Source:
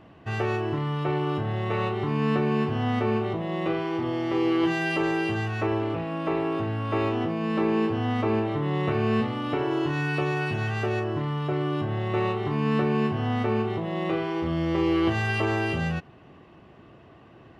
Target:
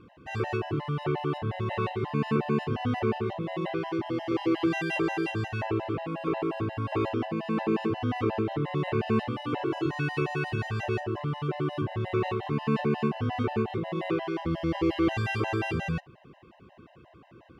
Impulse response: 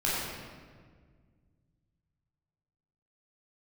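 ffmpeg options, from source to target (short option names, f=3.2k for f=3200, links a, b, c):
-af "afftfilt=real='re*gt(sin(2*PI*5.6*pts/sr)*(1-2*mod(floor(b*sr/1024/530),2)),0)':imag='im*gt(sin(2*PI*5.6*pts/sr)*(1-2*mod(floor(b*sr/1024/530),2)),0)':win_size=1024:overlap=0.75"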